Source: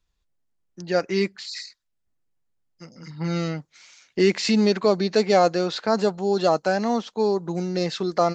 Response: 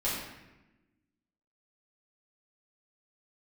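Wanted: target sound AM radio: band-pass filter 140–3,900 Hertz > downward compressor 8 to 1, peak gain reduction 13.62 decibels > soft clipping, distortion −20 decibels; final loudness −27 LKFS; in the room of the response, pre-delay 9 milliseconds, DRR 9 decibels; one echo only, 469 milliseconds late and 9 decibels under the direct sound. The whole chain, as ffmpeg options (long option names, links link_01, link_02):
-filter_complex "[0:a]aecho=1:1:469:0.355,asplit=2[link_01][link_02];[1:a]atrim=start_sample=2205,adelay=9[link_03];[link_02][link_03]afir=irnorm=-1:irlink=0,volume=-17dB[link_04];[link_01][link_04]amix=inputs=2:normalize=0,highpass=140,lowpass=3900,acompressor=threshold=-26dB:ratio=8,asoftclip=threshold=-21.5dB,volume=5dB"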